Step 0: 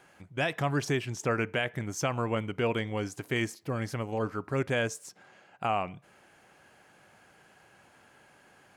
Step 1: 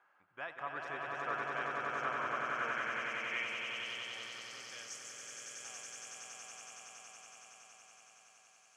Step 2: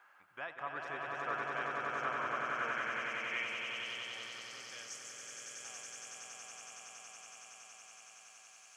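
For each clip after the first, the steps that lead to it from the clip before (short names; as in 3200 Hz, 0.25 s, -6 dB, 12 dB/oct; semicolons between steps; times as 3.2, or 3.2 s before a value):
swelling echo 93 ms, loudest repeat 8, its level -3.5 dB; band-pass sweep 1200 Hz -> 6400 Hz, 2.39–5.09; gain -5 dB
mismatched tape noise reduction encoder only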